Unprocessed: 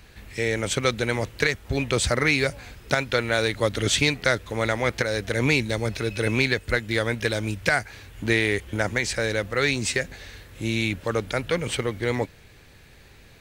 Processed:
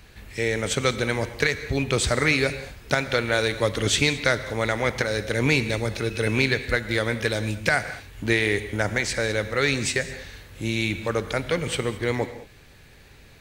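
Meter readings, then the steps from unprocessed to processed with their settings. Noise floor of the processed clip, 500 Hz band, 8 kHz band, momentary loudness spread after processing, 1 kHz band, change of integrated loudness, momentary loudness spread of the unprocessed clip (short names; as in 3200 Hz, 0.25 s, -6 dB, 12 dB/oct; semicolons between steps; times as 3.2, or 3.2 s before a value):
-50 dBFS, +0.5 dB, +0.5 dB, 7 LU, +0.5 dB, +0.5 dB, 7 LU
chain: non-linear reverb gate 0.24 s flat, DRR 11 dB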